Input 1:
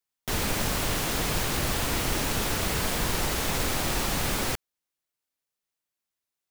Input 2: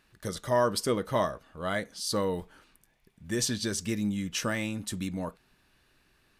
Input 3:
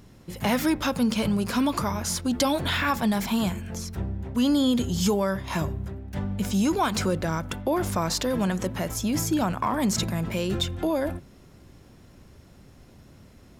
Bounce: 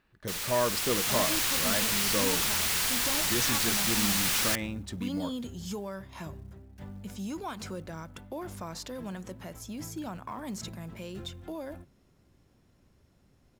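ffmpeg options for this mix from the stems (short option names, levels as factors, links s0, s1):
-filter_complex "[0:a]tiltshelf=f=920:g=-9.5,bandreject=f=600:w=12,dynaudnorm=f=160:g=11:m=3.76,volume=0.224[s0];[1:a]adynamicsmooth=sensitivity=6:basefreq=3400,volume=0.75[s1];[2:a]adelay=650,volume=0.211[s2];[s0][s1][s2]amix=inputs=3:normalize=0,acrusher=bits=8:mode=log:mix=0:aa=0.000001"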